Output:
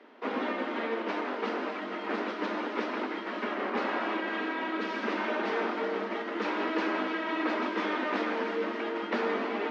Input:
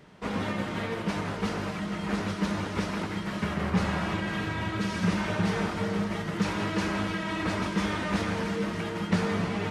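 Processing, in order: steep high-pass 230 Hz 96 dB/oct; air absorption 260 m; gain +2.5 dB

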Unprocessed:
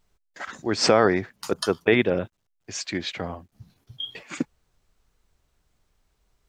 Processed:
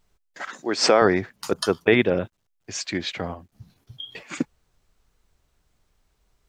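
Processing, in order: 0.47–1.02 HPF 280 Hz 12 dB/oct; 3.33–4.12 compressor 4:1, threshold -36 dBFS, peak gain reduction 7 dB; gain +1.5 dB

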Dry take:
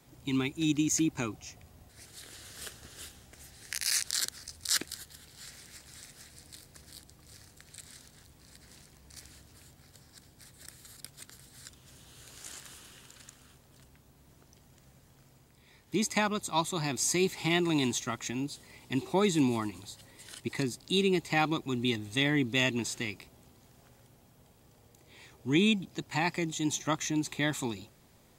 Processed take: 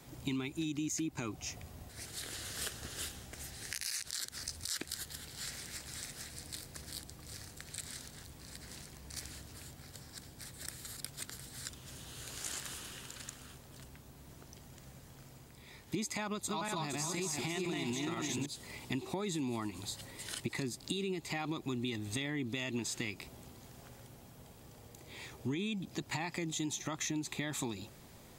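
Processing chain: 16.2–18.46 regenerating reverse delay 0.243 s, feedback 44%, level -0.5 dB; limiter -23.5 dBFS, peak gain reduction 12 dB; compressor 6:1, threshold -40 dBFS, peak gain reduction 12 dB; gain +5.5 dB

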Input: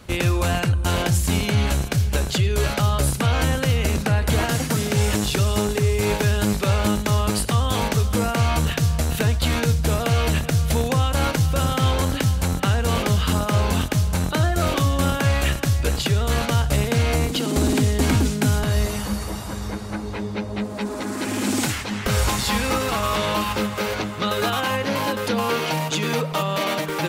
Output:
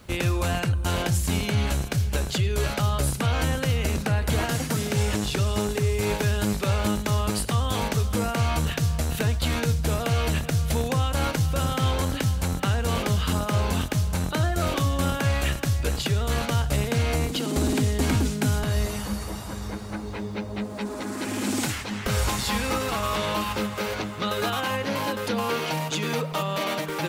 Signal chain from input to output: 5.03–5.6 high shelf 9700 Hz -6.5 dB; bit-crush 10-bit; gain -4 dB

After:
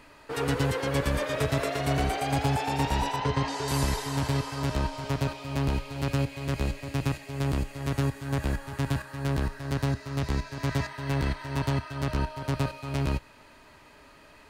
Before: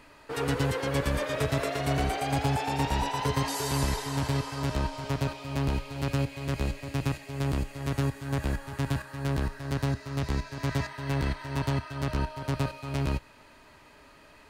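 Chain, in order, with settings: 3.16–3.68 air absorption 100 m; gain +1 dB

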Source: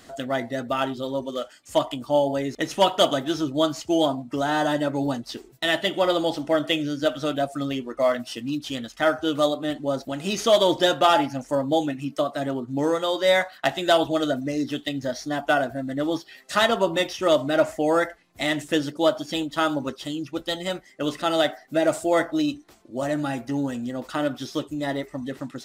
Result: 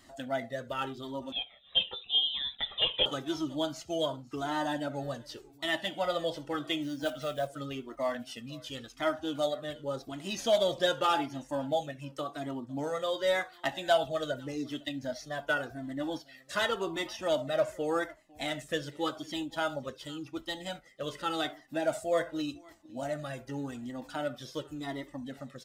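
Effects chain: 6.82–7.49 block floating point 5-bit; echo 0.504 s -24 dB; on a send at -20.5 dB: reverb, pre-delay 3 ms; 1.32–3.06 on the sum: inverted band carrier 3800 Hz; cascading flanger falling 0.88 Hz; gain -4.5 dB

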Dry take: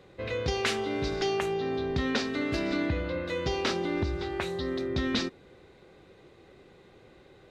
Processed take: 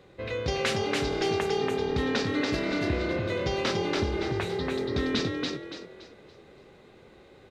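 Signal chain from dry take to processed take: frequency-shifting echo 0.284 s, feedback 35%, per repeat +38 Hz, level -3 dB

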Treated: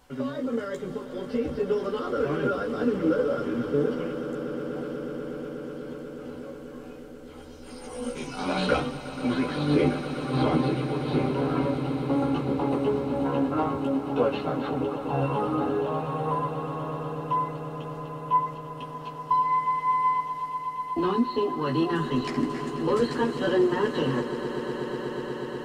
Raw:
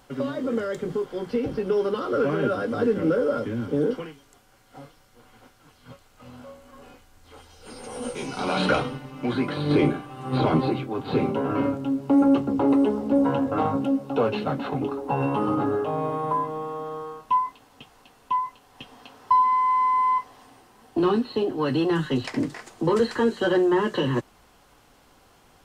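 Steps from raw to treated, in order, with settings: chorus voices 6, 0.45 Hz, delay 14 ms, depth 2.3 ms; swelling echo 0.122 s, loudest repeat 8, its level -16 dB

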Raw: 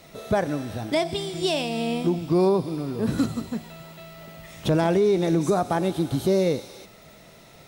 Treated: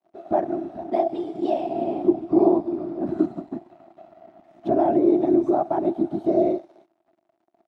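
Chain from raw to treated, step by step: whisperiser; crossover distortion -44 dBFS; double band-pass 480 Hz, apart 0.95 oct; gain +9 dB

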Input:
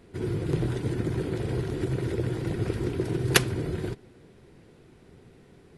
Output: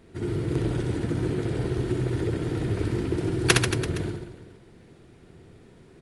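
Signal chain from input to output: reverse bouncing-ball echo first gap 60 ms, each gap 1.2×, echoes 5; speed mistake 25 fps video run at 24 fps

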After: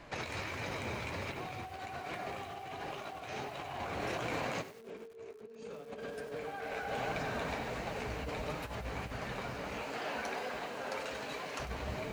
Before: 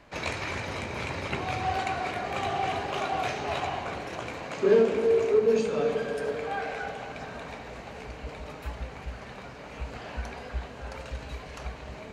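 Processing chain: 9.78–11.6 HPF 270 Hz 12 dB/oct; negative-ratio compressor -38 dBFS, ratio -1; flange 1.4 Hz, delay 5.5 ms, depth 5.9 ms, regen -41%; lo-fi delay 97 ms, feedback 55%, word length 8-bit, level -13 dB

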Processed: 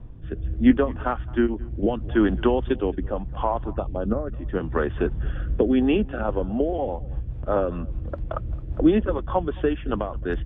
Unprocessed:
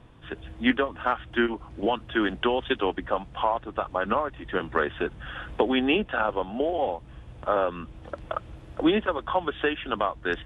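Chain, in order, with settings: tilt -4 dB/oct; echo 0.218 s -22.5 dB; 3.73–4.27 envelope phaser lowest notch 470 Hz, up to 2900 Hz, full sweep at -17.5 dBFS; rotary speaker horn 0.75 Hz, later 5 Hz, at 5.63

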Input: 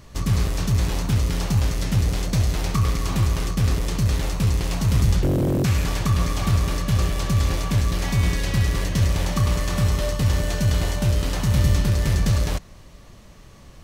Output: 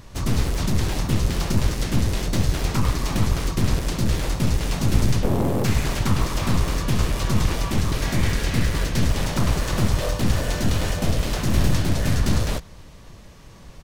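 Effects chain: one-sided fold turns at -22 dBFS; harmoniser -3 st -3 dB

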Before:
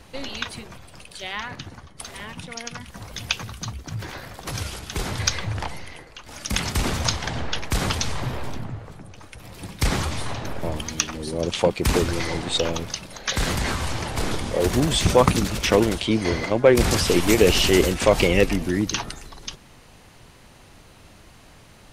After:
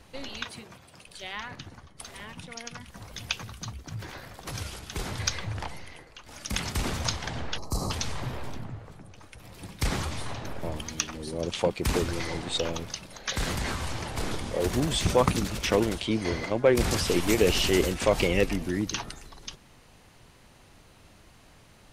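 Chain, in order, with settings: 0.45–1.07 HPF 98 Hz; 7.58–7.91 spectral gain 1300–3900 Hz -21 dB; gain -6 dB

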